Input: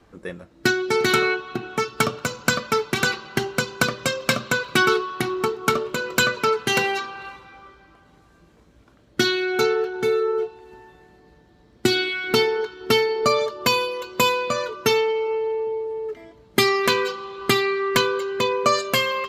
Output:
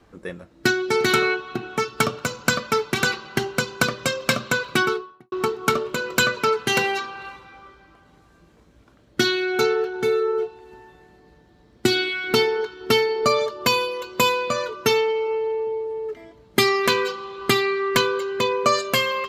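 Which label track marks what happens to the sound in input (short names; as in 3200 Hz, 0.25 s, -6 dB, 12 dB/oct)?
4.650000	5.320000	studio fade out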